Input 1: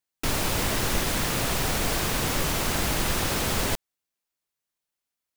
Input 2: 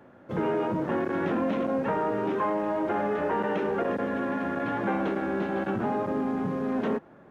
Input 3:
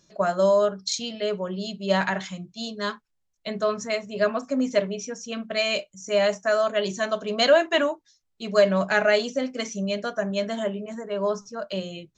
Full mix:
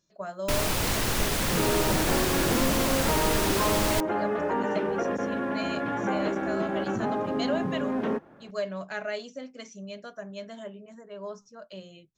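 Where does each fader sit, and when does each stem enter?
−1.0, −0.5, −13.0 decibels; 0.25, 1.20, 0.00 seconds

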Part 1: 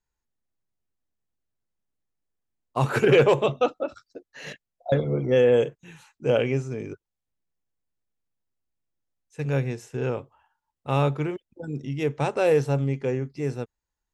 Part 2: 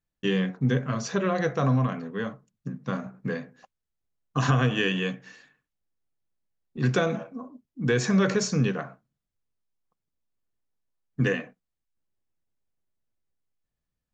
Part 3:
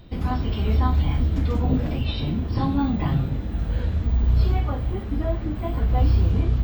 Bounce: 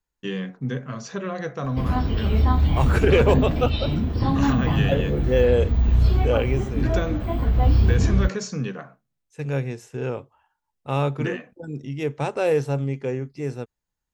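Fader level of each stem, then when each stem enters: −0.5, −4.0, +1.5 decibels; 0.00, 0.00, 1.65 seconds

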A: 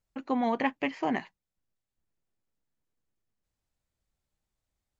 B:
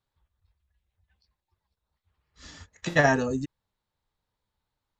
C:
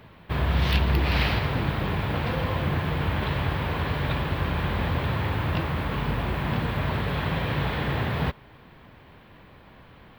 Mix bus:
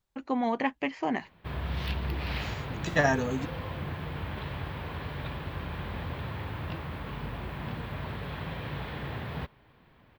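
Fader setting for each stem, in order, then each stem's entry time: −0.5, −3.5, −10.0 decibels; 0.00, 0.00, 1.15 seconds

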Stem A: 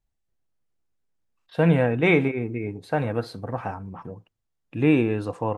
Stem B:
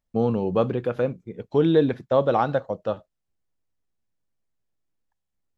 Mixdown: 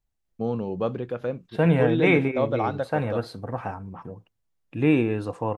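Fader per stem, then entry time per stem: −1.0, −5.0 decibels; 0.00, 0.25 seconds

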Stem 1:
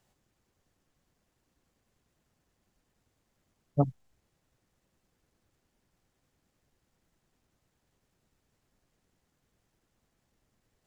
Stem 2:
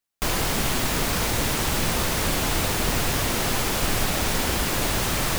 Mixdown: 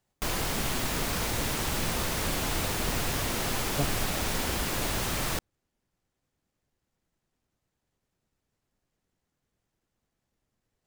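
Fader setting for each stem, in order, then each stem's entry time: −5.5, −6.0 decibels; 0.00, 0.00 seconds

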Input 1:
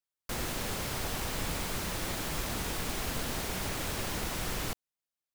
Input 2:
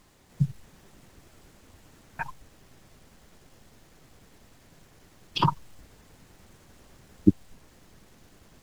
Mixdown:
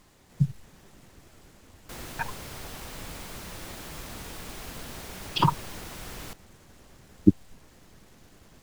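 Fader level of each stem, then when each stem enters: −6.0, +1.0 decibels; 1.60, 0.00 seconds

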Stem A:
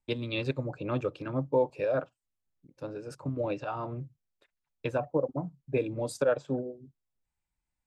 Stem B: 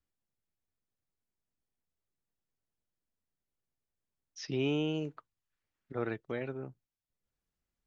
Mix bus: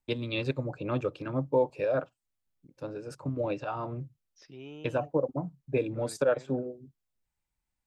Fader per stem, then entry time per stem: +0.5, −14.0 decibels; 0.00, 0.00 seconds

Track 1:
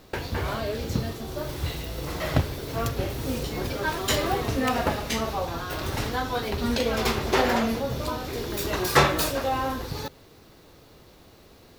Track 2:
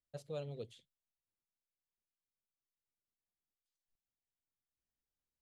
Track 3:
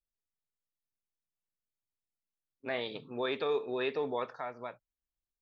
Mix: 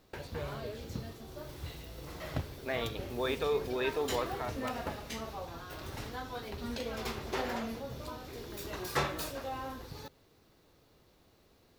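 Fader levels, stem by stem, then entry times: −13.0, 0.0, 0.0 decibels; 0.00, 0.05, 0.00 seconds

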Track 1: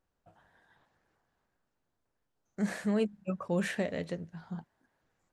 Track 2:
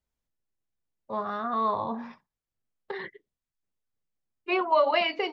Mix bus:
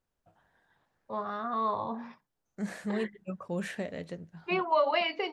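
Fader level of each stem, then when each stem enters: −3.5, −3.5 decibels; 0.00, 0.00 seconds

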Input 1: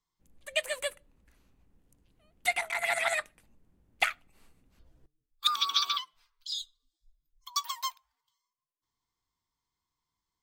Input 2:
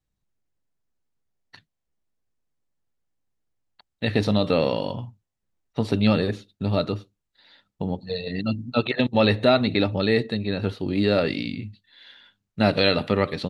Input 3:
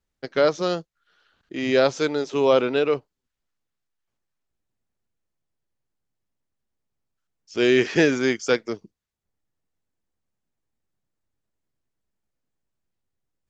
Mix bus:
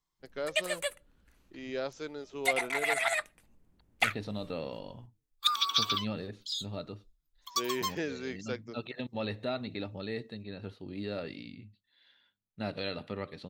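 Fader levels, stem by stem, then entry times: −0.5, −16.5, −17.0 decibels; 0.00, 0.00, 0.00 seconds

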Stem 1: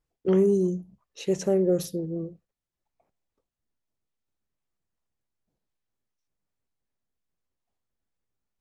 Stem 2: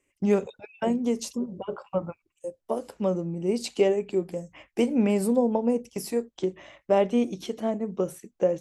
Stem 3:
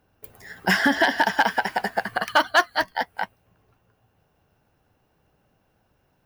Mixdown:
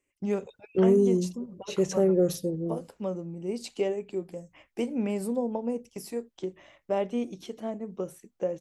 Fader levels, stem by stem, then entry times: 0.0 dB, −6.5 dB, muted; 0.50 s, 0.00 s, muted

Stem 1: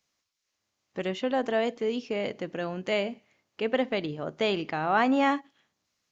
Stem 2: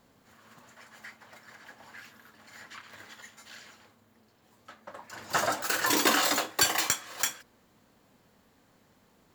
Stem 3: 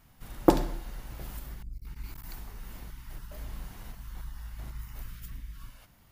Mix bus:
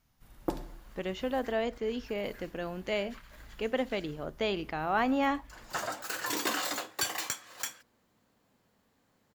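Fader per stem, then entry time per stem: −4.5, −7.5, −12.5 decibels; 0.00, 0.40, 0.00 seconds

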